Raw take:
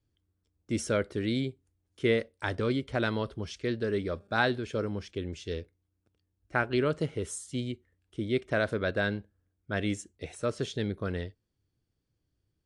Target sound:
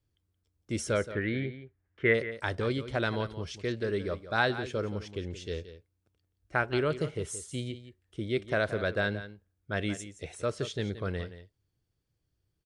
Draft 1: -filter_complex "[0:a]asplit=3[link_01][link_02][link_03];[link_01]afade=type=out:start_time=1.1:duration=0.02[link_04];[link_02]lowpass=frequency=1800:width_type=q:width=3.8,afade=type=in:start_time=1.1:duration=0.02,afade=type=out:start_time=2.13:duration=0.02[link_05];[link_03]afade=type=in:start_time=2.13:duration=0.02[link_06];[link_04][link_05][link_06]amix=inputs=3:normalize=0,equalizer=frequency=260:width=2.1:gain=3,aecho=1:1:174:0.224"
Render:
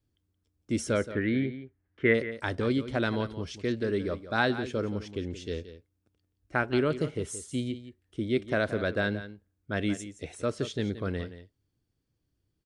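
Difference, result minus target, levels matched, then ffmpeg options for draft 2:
250 Hz band +3.5 dB
-filter_complex "[0:a]asplit=3[link_01][link_02][link_03];[link_01]afade=type=out:start_time=1.1:duration=0.02[link_04];[link_02]lowpass=frequency=1800:width_type=q:width=3.8,afade=type=in:start_time=1.1:duration=0.02,afade=type=out:start_time=2.13:duration=0.02[link_05];[link_03]afade=type=in:start_time=2.13:duration=0.02[link_06];[link_04][link_05][link_06]amix=inputs=3:normalize=0,equalizer=frequency=260:width=2.1:gain=-5,aecho=1:1:174:0.224"

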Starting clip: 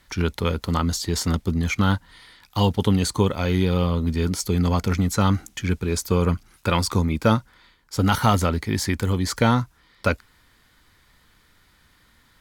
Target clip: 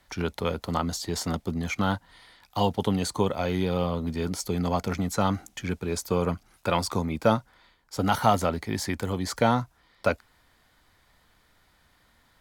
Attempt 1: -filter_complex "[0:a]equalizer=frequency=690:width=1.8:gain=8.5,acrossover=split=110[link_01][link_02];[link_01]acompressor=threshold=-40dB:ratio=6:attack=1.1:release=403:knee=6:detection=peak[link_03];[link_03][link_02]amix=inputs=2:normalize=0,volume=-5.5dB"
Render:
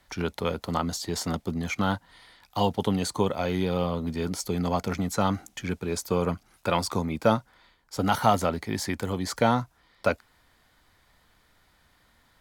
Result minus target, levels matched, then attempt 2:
downward compressor: peak gain reduction +5 dB
-filter_complex "[0:a]equalizer=frequency=690:width=1.8:gain=8.5,acrossover=split=110[link_01][link_02];[link_01]acompressor=threshold=-34dB:ratio=6:attack=1.1:release=403:knee=6:detection=peak[link_03];[link_03][link_02]amix=inputs=2:normalize=0,volume=-5.5dB"

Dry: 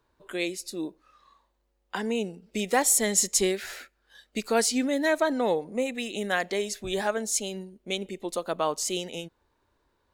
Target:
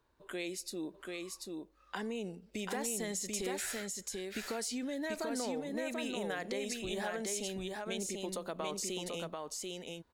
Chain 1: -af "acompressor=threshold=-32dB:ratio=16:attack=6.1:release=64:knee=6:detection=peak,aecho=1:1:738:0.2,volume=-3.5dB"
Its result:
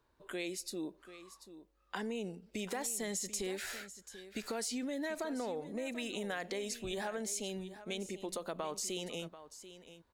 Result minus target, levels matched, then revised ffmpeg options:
echo-to-direct −11 dB
-af "acompressor=threshold=-32dB:ratio=16:attack=6.1:release=64:knee=6:detection=peak,aecho=1:1:738:0.708,volume=-3.5dB"

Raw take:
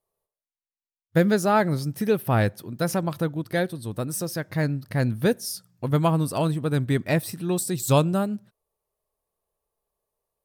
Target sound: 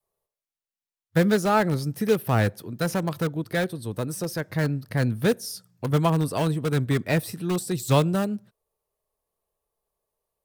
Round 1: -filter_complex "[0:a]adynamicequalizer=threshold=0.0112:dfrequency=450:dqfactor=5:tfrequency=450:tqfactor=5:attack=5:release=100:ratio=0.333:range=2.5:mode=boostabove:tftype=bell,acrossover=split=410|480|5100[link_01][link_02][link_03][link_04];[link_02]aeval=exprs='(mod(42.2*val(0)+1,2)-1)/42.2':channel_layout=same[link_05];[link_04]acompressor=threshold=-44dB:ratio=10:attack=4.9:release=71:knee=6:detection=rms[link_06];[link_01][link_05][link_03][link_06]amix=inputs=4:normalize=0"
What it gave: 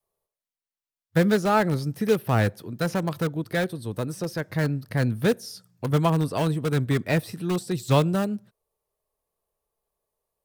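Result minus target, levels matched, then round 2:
downward compressor: peak gain reduction +10 dB
-filter_complex "[0:a]adynamicequalizer=threshold=0.0112:dfrequency=450:dqfactor=5:tfrequency=450:tqfactor=5:attack=5:release=100:ratio=0.333:range=2.5:mode=boostabove:tftype=bell,acrossover=split=410|480|5100[link_01][link_02][link_03][link_04];[link_02]aeval=exprs='(mod(42.2*val(0)+1,2)-1)/42.2':channel_layout=same[link_05];[link_04]acompressor=threshold=-33dB:ratio=10:attack=4.9:release=71:knee=6:detection=rms[link_06];[link_01][link_05][link_03][link_06]amix=inputs=4:normalize=0"

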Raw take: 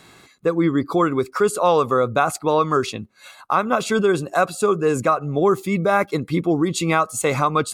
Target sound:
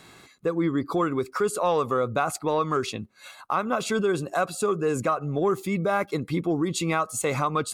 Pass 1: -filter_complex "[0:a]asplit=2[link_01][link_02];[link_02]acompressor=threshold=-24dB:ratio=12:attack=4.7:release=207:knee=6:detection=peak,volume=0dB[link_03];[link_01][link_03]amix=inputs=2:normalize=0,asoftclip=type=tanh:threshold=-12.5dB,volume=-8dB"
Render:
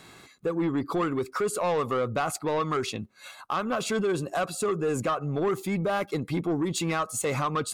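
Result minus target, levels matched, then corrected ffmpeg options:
soft clipping: distortion +16 dB
-filter_complex "[0:a]asplit=2[link_01][link_02];[link_02]acompressor=threshold=-24dB:ratio=12:attack=4.7:release=207:knee=6:detection=peak,volume=0dB[link_03];[link_01][link_03]amix=inputs=2:normalize=0,asoftclip=type=tanh:threshold=-1.5dB,volume=-8dB"

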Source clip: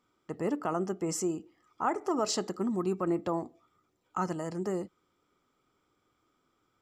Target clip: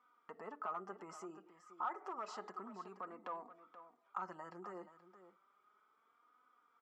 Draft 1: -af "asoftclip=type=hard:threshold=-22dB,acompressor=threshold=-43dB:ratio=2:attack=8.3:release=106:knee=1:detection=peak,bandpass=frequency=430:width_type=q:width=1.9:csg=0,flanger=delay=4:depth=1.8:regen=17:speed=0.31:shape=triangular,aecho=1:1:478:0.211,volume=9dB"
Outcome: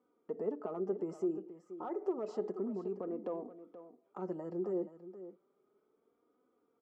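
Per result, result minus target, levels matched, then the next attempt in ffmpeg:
1,000 Hz band −13.0 dB; downward compressor: peak gain reduction −3 dB
-af "asoftclip=type=hard:threshold=-22dB,acompressor=threshold=-43dB:ratio=2:attack=8.3:release=106:knee=1:detection=peak,bandpass=frequency=1200:width_type=q:width=1.9:csg=0,flanger=delay=4:depth=1.8:regen=17:speed=0.31:shape=triangular,aecho=1:1:478:0.211,volume=9dB"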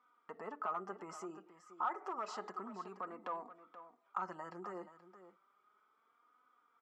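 downward compressor: peak gain reduction −3 dB
-af "asoftclip=type=hard:threshold=-22dB,acompressor=threshold=-49.5dB:ratio=2:attack=8.3:release=106:knee=1:detection=peak,bandpass=frequency=1200:width_type=q:width=1.9:csg=0,flanger=delay=4:depth=1.8:regen=17:speed=0.31:shape=triangular,aecho=1:1:478:0.211,volume=9dB"

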